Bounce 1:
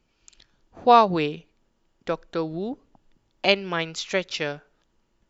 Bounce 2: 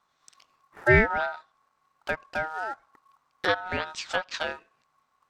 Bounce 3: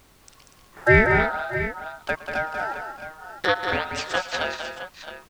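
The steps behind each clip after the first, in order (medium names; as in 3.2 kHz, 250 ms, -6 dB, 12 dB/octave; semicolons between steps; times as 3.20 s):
ring modulator 1.1 kHz; short-mantissa float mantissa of 2-bit; low-pass that closes with the level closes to 2.2 kHz, closed at -23 dBFS
added noise pink -59 dBFS; on a send: multi-tap echo 113/189/241/625/665 ms -18/-6.5/-11/-17.5/-12 dB; on the sum: trim +3 dB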